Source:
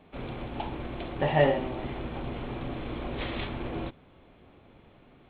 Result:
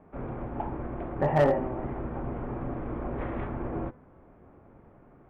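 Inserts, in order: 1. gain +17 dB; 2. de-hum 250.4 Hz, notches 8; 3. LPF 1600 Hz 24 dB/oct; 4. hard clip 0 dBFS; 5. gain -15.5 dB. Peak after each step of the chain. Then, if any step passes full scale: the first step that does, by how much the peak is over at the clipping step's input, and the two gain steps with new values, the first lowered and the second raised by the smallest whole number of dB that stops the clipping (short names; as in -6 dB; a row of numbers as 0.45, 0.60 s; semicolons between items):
+7.5, +7.5, +6.5, 0.0, -15.5 dBFS; step 1, 6.5 dB; step 1 +10 dB, step 5 -8.5 dB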